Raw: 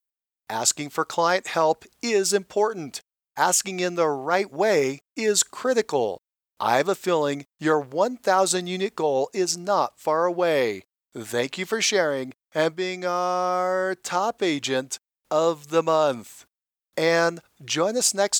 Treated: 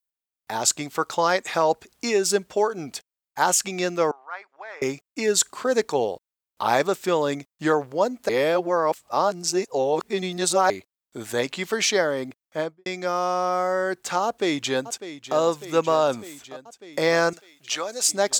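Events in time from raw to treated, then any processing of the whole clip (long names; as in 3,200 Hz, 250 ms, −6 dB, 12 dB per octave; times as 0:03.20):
0:04.11–0:04.82: four-pole ladder band-pass 1,500 Hz, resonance 30%
0:08.29–0:10.70: reverse
0:12.43–0:12.86: fade out and dull
0:14.25–0:15.36: delay throw 600 ms, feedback 75%, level −13 dB
0:17.33–0:18.09: high-pass filter 1,300 Hz 6 dB per octave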